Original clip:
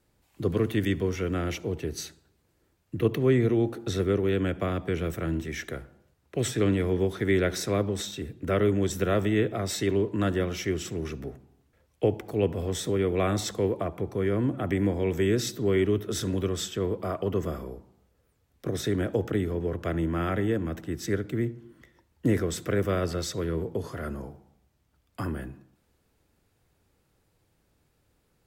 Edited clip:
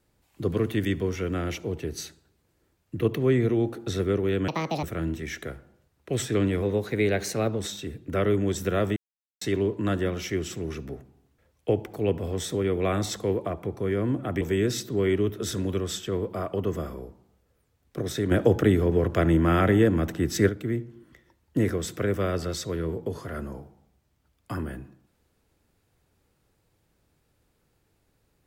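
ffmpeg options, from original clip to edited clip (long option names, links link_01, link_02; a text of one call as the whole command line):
ffmpeg -i in.wav -filter_complex "[0:a]asplit=10[link_01][link_02][link_03][link_04][link_05][link_06][link_07][link_08][link_09][link_10];[link_01]atrim=end=4.484[link_11];[link_02]atrim=start=4.48:end=5.09,asetpts=PTS-STARTPTS,asetrate=76734,aresample=44100,atrim=end_sample=15460,asetpts=PTS-STARTPTS[link_12];[link_03]atrim=start=5.086:end=6.884[link_13];[link_04]atrim=start=6.88:end=7.94,asetpts=PTS-STARTPTS,asetrate=48069,aresample=44100,atrim=end_sample=42886,asetpts=PTS-STARTPTS[link_14];[link_05]atrim=start=7.936:end=9.31,asetpts=PTS-STARTPTS,afade=type=out:start_time=1.37:duration=0.004:curve=hsin[link_15];[link_06]atrim=start=9.31:end=9.76,asetpts=PTS-STARTPTS,volume=0[link_16];[link_07]atrim=start=9.76:end=14.762,asetpts=PTS-STARTPTS,afade=type=in:duration=0.004:curve=hsin[link_17];[link_08]atrim=start=15.098:end=19.002[link_18];[link_09]atrim=start=18.998:end=21.182,asetpts=PTS-STARTPTS,volume=7dB[link_19];[link_10]atrim=start=21.178[link_20];[link_11][link_12]acrossfade=duration=0.004:curve1=hsin:curve2=hsin[link_21];[link_21][link_13]acrossfade=duration=0.004:curve1=hsin:curve2=hsin[link_22];[link_22][link_14]acrossfade=duration=0.004:curve1=hsin:curve2=hsin[link_23];[link_15][link_16][link_17]concat=n=3:v=0:a=1[link_24];[link_23][link_24]acrossfade=duration=0.004:curve1=hsin:curve2=hsin[link_25];[link_25][link_18]acrossfade=duration=0.004:curve1=hsin:curve2=hsin[link_26];[link_26][link_19]acrossfade=duration=0.004:curve1=hsin:curve2=hsin[link_27];[link_27][link_20]acrossfade=duration=0.004:curve1=hsin:curve2=hsin" out.wav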